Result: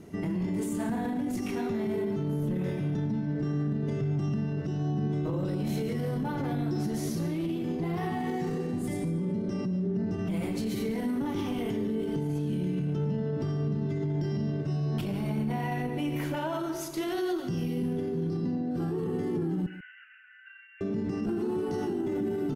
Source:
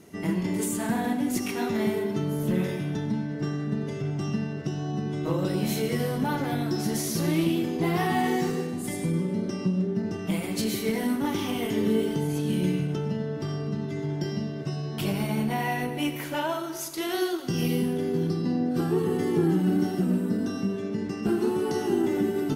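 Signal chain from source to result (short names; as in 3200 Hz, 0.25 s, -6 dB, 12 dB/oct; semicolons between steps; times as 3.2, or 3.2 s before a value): 19.66–20.81 Chebyshev band-pass 1400–2900 Hz, order 5; tilt -2 dB/oct; limiter -24 dBFS, peak gain reduction 14.5 dB; on a send: echo 0.143 s -14 dB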